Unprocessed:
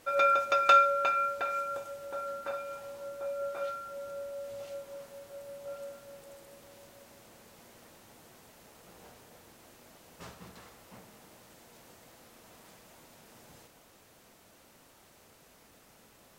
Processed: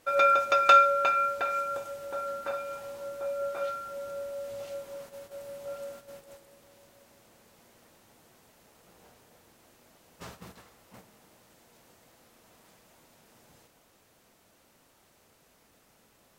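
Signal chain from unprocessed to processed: gate -50 dBFS, range -7 dB; trim +3 dB

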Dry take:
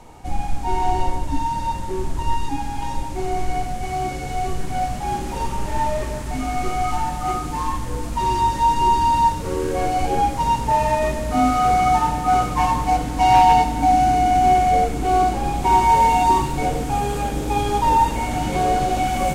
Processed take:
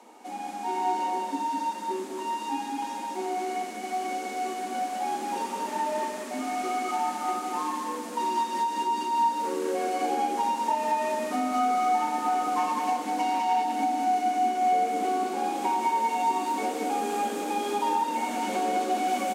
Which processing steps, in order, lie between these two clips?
steep high-pass 210 Hz 72 dB/octave; compression, threshold -19 dBFS, peak gain reduction 9.5 dB; delay 203 ms -3.5 dB; trim -5.5 dB

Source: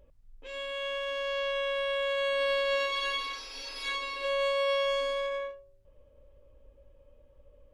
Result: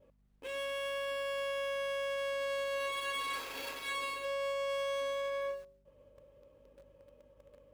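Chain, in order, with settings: median filter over 9 samples; expander -57 dBFS; high-pass 140 Hz 12 dB/octave; reverse; compression 6:1, threshold -41 dBFS, peak gain reduction 14 dB; reverse; hum 50 Hz, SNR 28 dB; in parallel at -5 dB: small samples zeroed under -53.5 dBFS; on the sum: trim +2.5 dB

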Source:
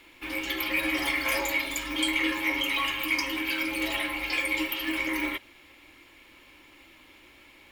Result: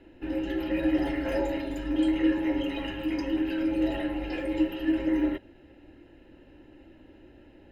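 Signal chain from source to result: boxcar filter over 39 samples; trim +9 dB

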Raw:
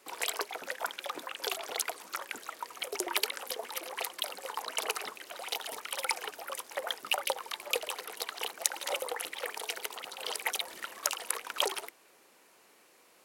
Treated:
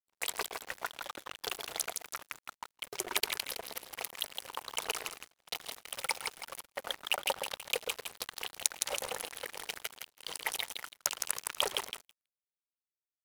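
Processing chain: two-band feedback delay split 830 Hz, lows 117 ms, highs 163 ms, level -4 dB; crossover distortion -36.5 dBFS; gate -48 dBFS, range -27 dB

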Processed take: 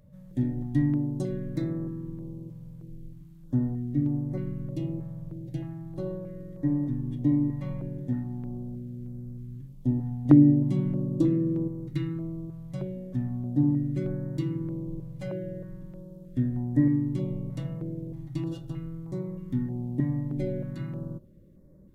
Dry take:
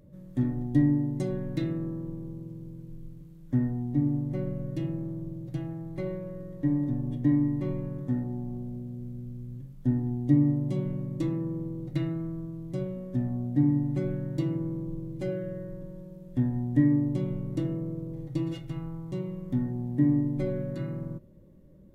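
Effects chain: 10.25–11.68 s: peaking EQ 300 Hz +7.5 dB 2.1 oct; step-sequenced notch 3.2 Hz 350–2900 Hz

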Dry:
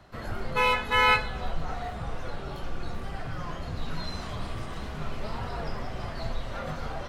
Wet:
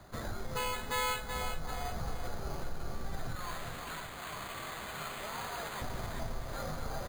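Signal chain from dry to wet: 3.35–5.82 s: tilt EQ +4.5 dB/octave; compression 3:1, threshold -36 dBFS, peak gain reduction 14 dB; feedback delay 380 ms, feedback 43%, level -7 dB; careless resampling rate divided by 8×, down filtered, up hold

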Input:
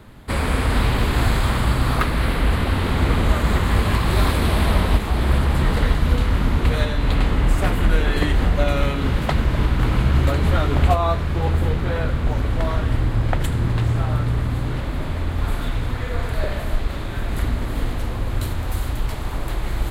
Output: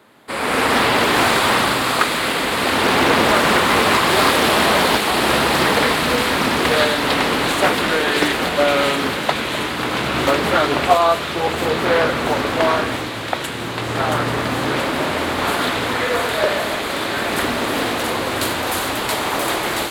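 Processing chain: high-pass 340 Hz 12 dB/octave; level rider gain up to 14.5 dB; feedback echo behind a high-pass 676 ms, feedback 70%, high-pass 2.7 kHz, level -3 dB; loudspeaker Doppler distortion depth 0.35 ms; trim -1 dB

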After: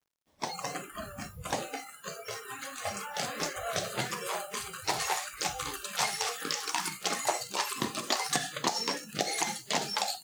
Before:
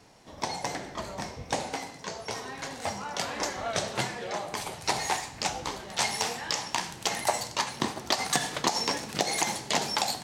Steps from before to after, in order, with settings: word length cut 8-bit, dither none; ever faster or slower copies 245 ms, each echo +4 st, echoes 3, each echo -6 dB; spectral noise reduction 21 dB; trim -3 dB

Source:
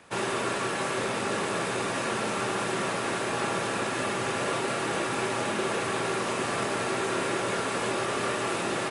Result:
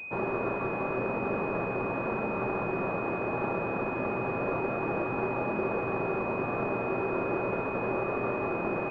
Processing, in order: class-D stage that switches slowly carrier 2.5 kHz

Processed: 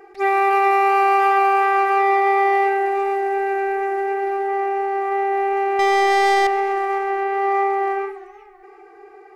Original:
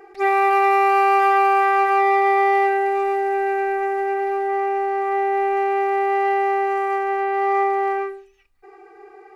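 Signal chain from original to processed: 5.79–6.47 s: waveshaping leveller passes 3; modulated delay 128 ms, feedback 74%, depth 151 cents, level -21 dB

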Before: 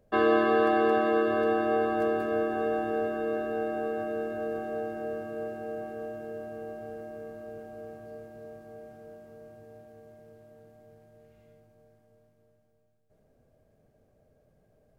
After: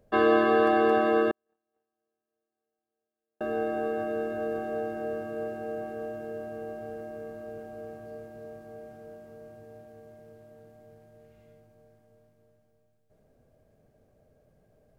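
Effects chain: 1.31–3.41 s: gate -18 dBFS, range -60 dB; trim +1.5 dB

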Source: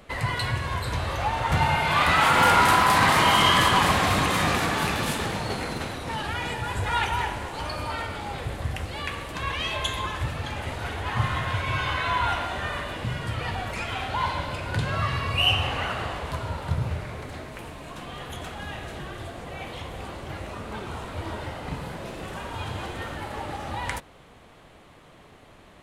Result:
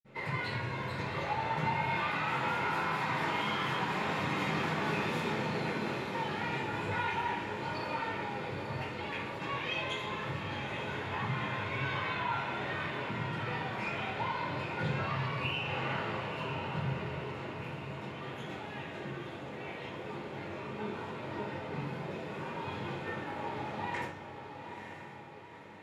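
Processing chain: high-pass 180 Hz 6 dB/octave; compression, threshold -25 dBFS, peak gain reduction 10 dB; flange 1.7 Hz, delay 6.8 ms, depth 4.5 ms, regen +75%; vibrato 1.2 Hz 33 cents; echo that smears into a reverb 916 ms, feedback 48%, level -8 dB; reverberation, pre-delay 47 ms

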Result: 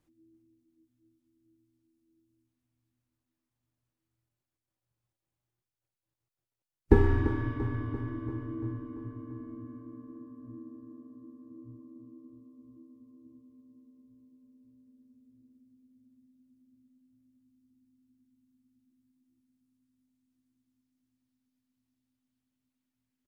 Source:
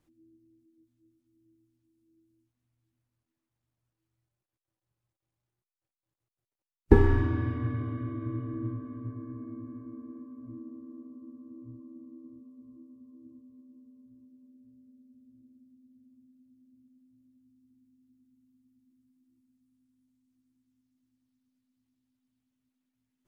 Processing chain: feedback delay 341 ms, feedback 59%, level -12 dB; trim -2 dB

